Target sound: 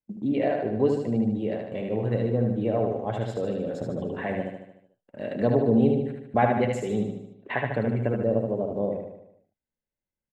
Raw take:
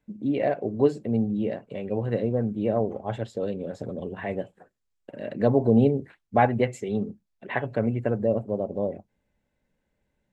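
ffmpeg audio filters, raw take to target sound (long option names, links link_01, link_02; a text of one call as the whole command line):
ffmpeg -i in.wav -filter_complex "[0:a]agate=range=-22dB:threshold=-39dB:ratio=16:detection=peak,asplit=2[link_01][link_02];[link_02]acompressor=threshold=-29dB:ratio=6,volume=0dB[link_03];[link_01][link_03]amix=inputs=2:normalize=0,aecho=1:1:75|150|225|300|375|450|525:0.631|0.341|0.184|0.0994|0.0537|0.029|0.0156,volume=-4.5dB" out.wav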